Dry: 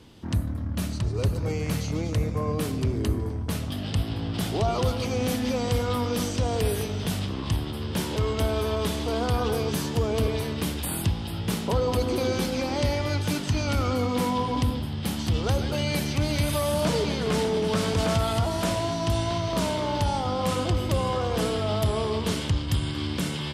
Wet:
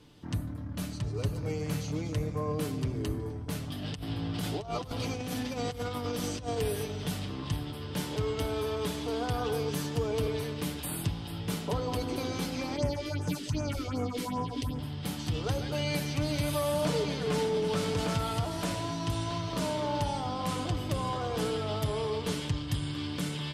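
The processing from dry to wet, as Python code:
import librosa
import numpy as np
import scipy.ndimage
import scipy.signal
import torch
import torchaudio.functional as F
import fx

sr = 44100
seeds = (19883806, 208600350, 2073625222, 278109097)

y = fx.over_compress(x, sr, threshold_db=-27.0, ratio=-0.5, at=(3.82, 6.59))
y = fx.phaser_stages(y, sr, stages=4, low_hz=120.0, high_hz=4100.0, hz=2.6, feedback_pct=25, at=(12.76, 14.79))
y = y + 0.49 * np.pad(y, (int(6.8 * sr / 1000.0), 0))[:len(y)]
y = y * librosa.db_to_amplitude(-6.5)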